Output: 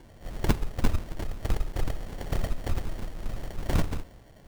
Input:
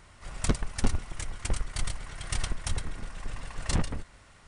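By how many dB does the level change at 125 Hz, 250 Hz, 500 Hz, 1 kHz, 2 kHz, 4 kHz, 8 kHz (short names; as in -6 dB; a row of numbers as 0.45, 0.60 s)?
+2.5, +2.5, +5.0, +2.0, -1.5, -4.0, -9.0 dB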